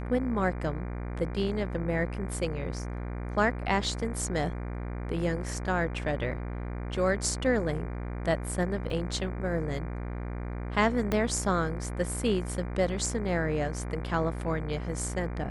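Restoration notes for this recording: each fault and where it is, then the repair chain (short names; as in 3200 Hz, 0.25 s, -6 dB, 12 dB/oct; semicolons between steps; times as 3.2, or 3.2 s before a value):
buzz 60 Hz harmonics 40 -35 dBFS
8.9 gap 3.4 ms
11.12 pop -14 dBFS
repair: de-click; de-hum 60 Hz, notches 40; interpolate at 8.9, 3.4 ms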